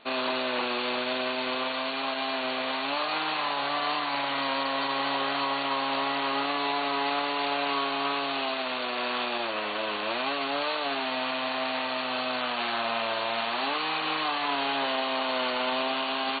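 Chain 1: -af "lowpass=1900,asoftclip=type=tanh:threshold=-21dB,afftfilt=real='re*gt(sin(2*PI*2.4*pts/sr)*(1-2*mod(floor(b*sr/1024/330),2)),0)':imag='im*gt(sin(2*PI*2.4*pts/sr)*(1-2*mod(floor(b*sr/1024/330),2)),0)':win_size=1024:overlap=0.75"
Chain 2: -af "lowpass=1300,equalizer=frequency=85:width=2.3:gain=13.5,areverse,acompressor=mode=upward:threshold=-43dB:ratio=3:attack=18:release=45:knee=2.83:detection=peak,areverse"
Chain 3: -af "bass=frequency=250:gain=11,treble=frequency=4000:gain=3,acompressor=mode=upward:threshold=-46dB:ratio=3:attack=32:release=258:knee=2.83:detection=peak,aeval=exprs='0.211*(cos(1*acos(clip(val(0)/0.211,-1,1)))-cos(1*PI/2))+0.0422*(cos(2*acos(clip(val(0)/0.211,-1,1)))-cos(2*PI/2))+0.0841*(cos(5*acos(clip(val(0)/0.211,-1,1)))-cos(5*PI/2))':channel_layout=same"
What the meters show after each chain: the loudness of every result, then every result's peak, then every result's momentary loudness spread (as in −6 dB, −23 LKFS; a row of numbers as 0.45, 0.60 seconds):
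−34.5, −31.5, −20.0 LKFS; −22.5, −15.5, −15.0 dBFS; 3, 3, 1 LU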